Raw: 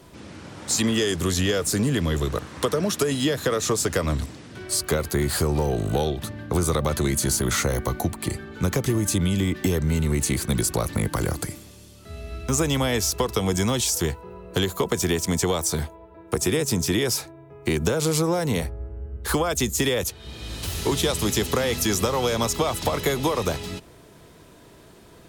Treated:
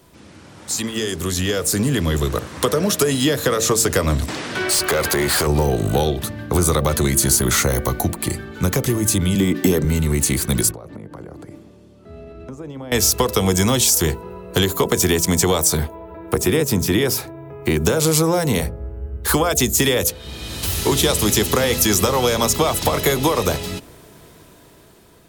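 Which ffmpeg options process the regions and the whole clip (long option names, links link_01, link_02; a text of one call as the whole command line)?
ffmpeg -i in.wav -filter_complex "[0:a]asettb=1/sr,asplit=3[link_01][link_02][link_03];[link_01]atrim=end=4.284[link_04];[link_02]atrim=start=4.28:end=5.47,asetpts=PTS-STARTPTS,afade=type=in:duration=0.004:curve=qsin,afade=type=out:start_time=1.186:duration=0.004:curve=qsin,asplit=2[link_05][link_06];[link_06]highpass=frequency=720:poles=1,volume=21dB,asoftclip=type=tanh:threshold=-12dB[link_07];[link_05][link_07]amix=inputs=2:normalize=0,lowpass=frequency=3400:poles=1,volume=-6dB,acompressor=threshold=-22dB:ratio=4:attack=3.2:release=140:knee=1:detection=peak[link_08];[link_03]atrim=start=5.466[link_09];[link_04][link_08]acrossfade=duration=0.004:curve1=hsin:curve2=qsin[link_10];[link_10][link_09]acrossfade=duration=0.004:curve1=qsin:curve2=hsin,asettb=1/sr,asplit=3[link_11][link_12][link_13];[link_11]atrim=end=9.354[link_14];[link_12]atrim=start=9.35:end=9.85,asetpts=PTS-STARTPTS,afade=type=in:duration=0.004:curve=qsin,afade=type=out:start_time=0.496:duration=0.004:curve=qsin,highpass=190,lowshelf=frequency=480:gain=7.5[link_15];[link_13]atrim=start=9.846[link_16];[link_14][link_15]acrossfade=duration=0.004:curve1=hsin:curve2=qsin[link_17];[link_17][link_16]acrossfade=duration=0.004:curve1=qsin:curve2=hsin,asettb=1/sr,asplit=3[link_18][link_19][link_20];[link_18]atrim=end=10.714[link_21];[link_19]atrim=start=10.71:end=12.92,asetpts=PTS-STARTPTS,afade=type=in:duration=0.004:curve=qsin,afade=type=out:start_time=2.206:duration=0.004:curve=qsin,acompressor=threshold=-31dB:ratio=16:attack=3.2:release=140:knee=1:detection=peak,bandpass=frequency=340:width_type=q:width=0.61[link_22];[link_20]atrim=start=12.916[link_23];[link_21][link_22]acrossfade=duration=0.004:curve1=hsin:curve2=qsin[link_24];[link_24][link_23]acrossfade=duration=0.004:curve1=qsin:curve2=hsin,asettb=1/sr,asplit=3[link_25][link_26][link_27];[link_25]atrim=end=15.774[link_28];[link_26]atrim=start=15.77:end=17.79,asetpts=PTS-STARTPTS,afade=type=in:duration=0.004:curve=qsin,afade=type=out:start_time=2.016:duration=0.004:curve=qsin,equalizer=frequency=7400:width_type=o:width=1.8:gain=-7,acompressor=mode=upward:threshold=-33dB:ratio=2.5:attack=3.2:release=140:knee=2.83:detection=peak[link_29];[link_27]atrim=start=17.786[link_30];[link_28][link_29]acrossfade=duration=0.004:curve1=hsin:curve2=qsin[link_31];[link_31][link_30]acrossfade=duration=0.004:curve1=qsin:curve2=hsin,highshelf=frequency=12000:gain=10,bandreject=frequency=56.75:width_type=h:width=4,bandreject=frequency=113.5:width_type=h:width=4,bandreject=frequency=170.25:width_type=h:width=4,bandreject=frequency=227:width_type=h:width=4,bandreject=frequency=283.75:width_type=h:width=4,bandreject=frequency=340.5:width_type=h:width=4,bandreject=frequency=397.25:width_type=h:width=4,bandreject=frequency=454:width_type=h:width=4,bandreject=frequency=510.75:width_type=h:width=4,bandreject=frequency=567.5:width_type=h:width=4,bandreject=frequency=624.25:width_type=h:width=4,bandreject=frequency=681:width_type=h:width=4,dynaudnorm=framelen=450:gausssize=7:maxgain=11dB,volume=-2.5dB" out.wav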